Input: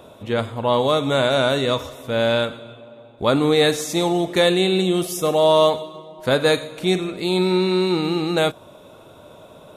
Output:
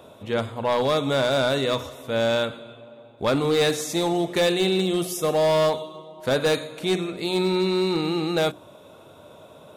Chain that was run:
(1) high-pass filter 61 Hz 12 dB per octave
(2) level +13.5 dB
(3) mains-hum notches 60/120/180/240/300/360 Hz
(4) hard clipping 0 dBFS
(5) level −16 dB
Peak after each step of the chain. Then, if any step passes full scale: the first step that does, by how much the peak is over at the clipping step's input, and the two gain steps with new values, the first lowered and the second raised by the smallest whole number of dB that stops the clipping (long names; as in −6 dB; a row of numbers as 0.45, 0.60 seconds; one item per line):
−4.5, +9.0, +9.0, 0.0, −16.0 dBFS
step 2, 9.0 dB
step 2 +4.5 dB, step 5 −7 dB